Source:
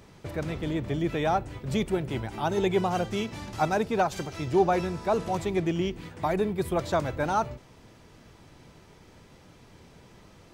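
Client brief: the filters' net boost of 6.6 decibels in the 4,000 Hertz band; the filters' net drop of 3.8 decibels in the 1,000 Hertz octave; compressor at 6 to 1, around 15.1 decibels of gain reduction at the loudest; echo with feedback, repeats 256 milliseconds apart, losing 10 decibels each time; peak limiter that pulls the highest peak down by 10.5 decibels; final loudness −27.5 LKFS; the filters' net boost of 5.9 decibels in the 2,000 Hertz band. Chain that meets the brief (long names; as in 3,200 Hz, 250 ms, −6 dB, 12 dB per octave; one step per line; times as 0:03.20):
parametric band 1,000 Hz −8 dB
parametric band 2,000 Hz +9 dB
parametric band 4,000 Hz +5.5 dB
downward compressor 6 to 1, threshold −36 dBFS
brickwall limiter −34 dBFS
repeating echo 256 ms, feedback 32%, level −10 dB
level +16.5 dB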